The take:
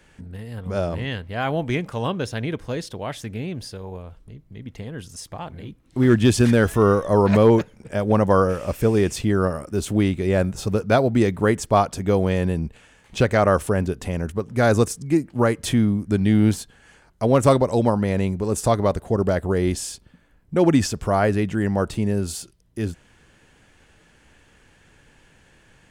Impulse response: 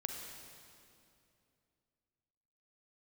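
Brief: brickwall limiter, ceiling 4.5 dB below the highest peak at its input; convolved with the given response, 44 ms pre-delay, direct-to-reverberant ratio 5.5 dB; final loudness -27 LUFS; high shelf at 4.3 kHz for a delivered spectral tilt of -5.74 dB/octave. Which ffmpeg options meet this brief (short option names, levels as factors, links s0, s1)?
-filter_complex "[0:a]highshelf=f=4300:g=5,alimiter=limit=0.335:level=0:latency=1,asplit=2[s0][s1];[1:a]atrim=start_sample=2205,adelay=44[s2];[s1][s2]afir=irnorm=-1:irlink=0,volume=0.531[s3];[s0][s3]amix=inputs=2:normalize=0,volume=0.531"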